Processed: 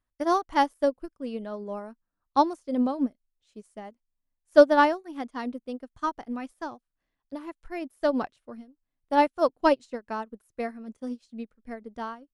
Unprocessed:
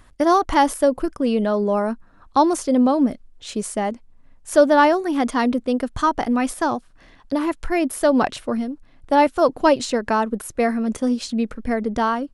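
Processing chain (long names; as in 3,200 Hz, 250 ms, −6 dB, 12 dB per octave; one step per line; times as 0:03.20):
expander for the loud parts 2.5 to 1, over −31 dBFS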